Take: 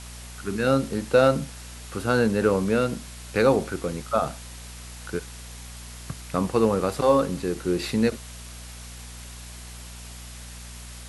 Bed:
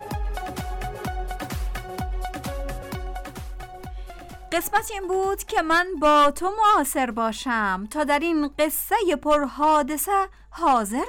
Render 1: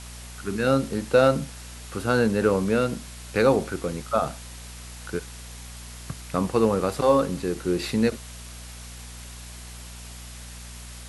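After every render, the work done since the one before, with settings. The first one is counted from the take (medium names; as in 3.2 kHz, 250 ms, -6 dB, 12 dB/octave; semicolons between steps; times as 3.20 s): no audible change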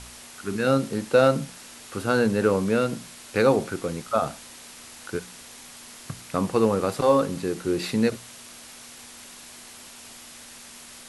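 de-hum 60 Hz, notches 3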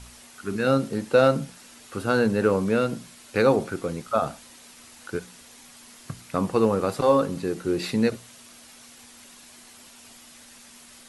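noise reduction 6 dB, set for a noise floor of -45 dBFS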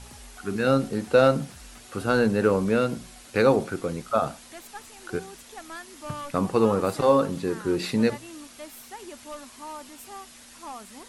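add bed -20.5 dB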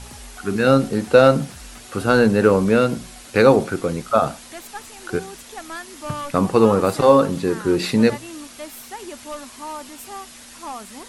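trim +6.5 dB; peak limiter -1 dBFS, peak gain reduction 1 dB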